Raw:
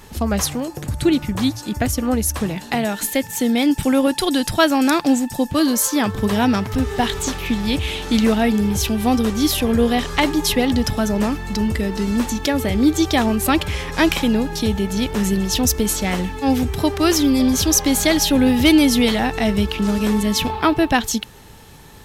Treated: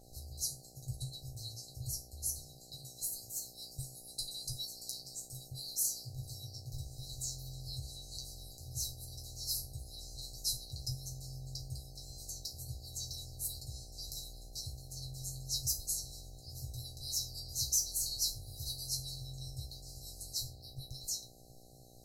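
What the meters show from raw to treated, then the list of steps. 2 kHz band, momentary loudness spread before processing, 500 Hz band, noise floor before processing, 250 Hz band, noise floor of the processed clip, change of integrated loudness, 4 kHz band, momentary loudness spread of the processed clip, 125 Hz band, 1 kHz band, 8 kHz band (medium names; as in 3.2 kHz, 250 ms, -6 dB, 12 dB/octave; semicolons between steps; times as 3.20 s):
under -40 dB, 7 LU, -39.0 dB, -38 dBFS, under -40 dB, -56 dBFS, -21.0 dB, -17.0 dB, 13 LU, -18.5 dB, under -40 dB, -13.0 dB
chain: FFT band-reject 150–3900 Hz; chord resonator C3 fifth, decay 0.28 s; mains buzz 60 Hz, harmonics 13, -62 dBFS -1 dB/octave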